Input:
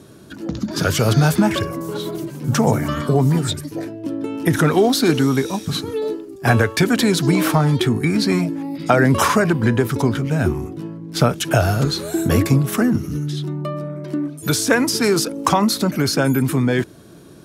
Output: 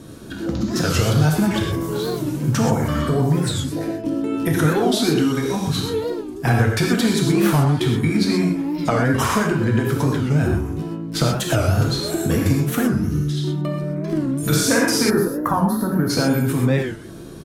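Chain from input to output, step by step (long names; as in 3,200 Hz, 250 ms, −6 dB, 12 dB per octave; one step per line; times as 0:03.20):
downward compressor 2 to 1, threshold −27 dBFS, peak gain reduction 9.5 dB
0:14.12–0:15.15: double-tracking delay 47 ms −2 dB
far-end echo of a speakerphone 170 ms, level −17 dB
reverb whose tail is shaped and stops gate 150 ms flat, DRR −0.5 dB
0:15.10–0:16.10: gain on a spectral selection 1,900–10,000 Hz −18 dB
low-shelf EQ 88 Hz +11.5 dB
wow of a warped record 45 rpm, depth 160 cents
level +1.5 dB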